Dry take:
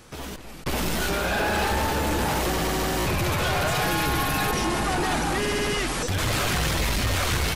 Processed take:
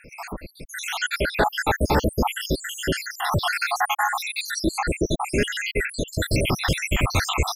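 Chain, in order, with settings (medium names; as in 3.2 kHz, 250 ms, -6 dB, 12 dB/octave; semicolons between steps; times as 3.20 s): random holes in the spectrogram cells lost 80%; treble shelf 9 kHz -6 dB; trim +7.5 dB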